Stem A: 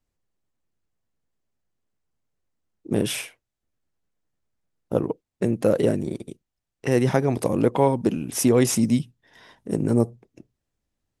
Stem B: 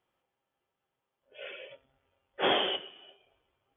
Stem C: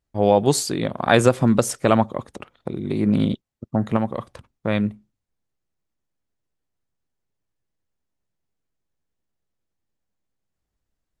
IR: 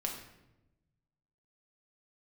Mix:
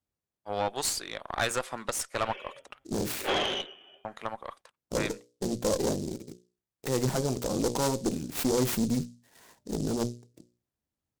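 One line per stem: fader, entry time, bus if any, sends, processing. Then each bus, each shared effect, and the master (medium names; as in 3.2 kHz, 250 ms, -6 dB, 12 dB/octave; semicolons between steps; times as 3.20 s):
-2.0 dB, 0.00 s, no send, high-pass 60 Hz; hum notches 60/120/180/240/300/360/420/480/540/600 Hz; delay time shaken by noise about 5.8 kHz, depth 0.089 ms
+2.5 dB, 0.85 s, no send, none
-1.5 dB, 0.30 s, no send, high-pass 900 Hz 12 dB/octave; expander -42 dBFS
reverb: none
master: valve stage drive 20 dB, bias 0.65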